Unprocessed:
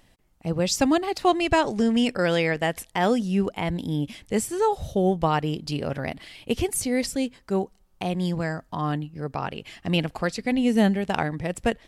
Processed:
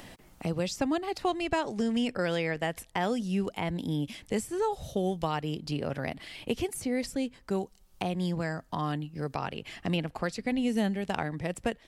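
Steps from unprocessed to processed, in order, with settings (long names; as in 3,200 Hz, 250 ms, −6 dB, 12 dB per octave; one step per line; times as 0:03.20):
multiband upward and downward compressor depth 70%
level −7 dB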